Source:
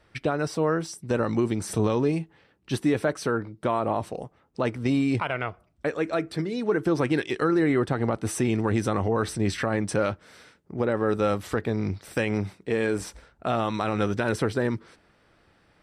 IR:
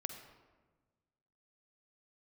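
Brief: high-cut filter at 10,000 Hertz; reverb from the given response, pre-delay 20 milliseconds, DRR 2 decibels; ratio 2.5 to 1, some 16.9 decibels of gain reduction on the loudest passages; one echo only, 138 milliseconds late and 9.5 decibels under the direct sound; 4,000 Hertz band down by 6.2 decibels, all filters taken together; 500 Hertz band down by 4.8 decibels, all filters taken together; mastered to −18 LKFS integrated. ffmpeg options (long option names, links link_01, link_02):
-filter_complex "[0:a]lowpass=10000,equalizer=frequency=500:width_type=o:gain=-6,equalizer=frequency=4000:width_type=o:gain=-8,acompressor=threshold=-48dB:ratio=2.5,aecho=1:1:138:0.335,asplit=2[link_01][link_02];[1:a]atrim=start_sample=2205,adelay=20[link_03];[link_02][link_03]afir=irnorm=-1:irlink=0,volume=-0.5dB[link_04];[link_01][link_04]amix=inputs=2:normalize=0,volume=24dB"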